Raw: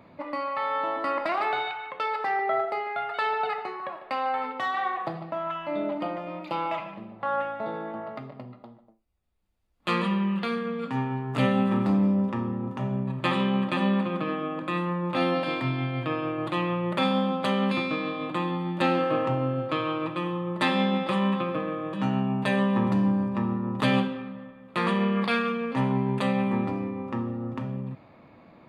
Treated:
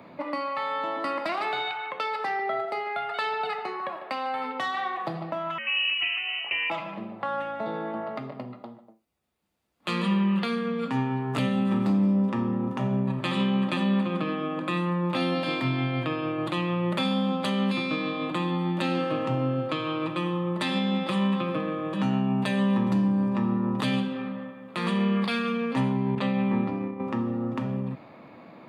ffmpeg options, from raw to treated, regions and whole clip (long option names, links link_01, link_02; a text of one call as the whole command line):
ffmpeg -i in.wav -filter_complex "[0:a]asettb=1/sr,asplit=3[link_01][link_02][link_03];[link_01]atrim=end=5.584[link_04];[link_02]atrim=start=5.58:end=6.7,asetpts=PTS-STARTPTS,afade=type=in:duration=0.004:curve=qsin,afade=type=out:start_time=1.116:duration=0.004:curve=qsin,bandreject=frequency=1000:width=27,lowpass=frequency=2700:width_type=q:width=0.5098,lowpass=frequency=2700:width_type=q:width=0.6013,lowpass=frequency=2700:width_type=q:width=0.9,lowpass=frequency=2700:width_type=q:width=2.563,afreqshift=-3200[link_05];[link_03]atrim=start=6.696[link_06];[link_04][link_05]acrossfade=duration=0.004:curve1=hsin:curve2=qsin[link_07];[link_07][link_06]acrossfade=duration=0.004:curve1=qsin:curve2=hsin,asettb=1/sr,asplit=3[link_08][link_09][link_10];[link_08]atrim=end=26.154[link_11];[link_09]atrim=start=26.15:end=27,asetpts=PTS-STARTPTS,afade=type=in:duration=0.004:curve=qsin,afade=type=out:start_time=0.846:duration=0.004:curve=qsin,lowpass=3800,agate=range=-33dB:threshold=-27dB:ratio=3:release=100:detection=peak[link_12];[link_10]atrim=start=26.996[link_13];[link_11][link_12]acrossfade=duration=0.004:curve1=hsin:curve2=qsin[link_14];[link_14][link_13]acrossfade=duration=0.004:curve1=qsin:curve2=hsin,highpass=150,acrossover=split=250|3000[link_15][link_16][link_17];[link_16]acompressor=threshold=-37dB:ratio=2.5[link_18];[link_15][link_18][link_17]amix=inputs=3:normalize=0,alimiter=limit=-22dB:level=0:latency=1:release=226,volume=5.5dB" out.wav